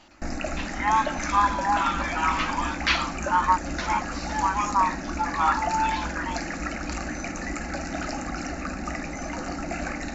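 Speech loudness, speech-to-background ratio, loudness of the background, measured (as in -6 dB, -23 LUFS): -25.5 LUFS, 6.0 dB, -31.5 LUFS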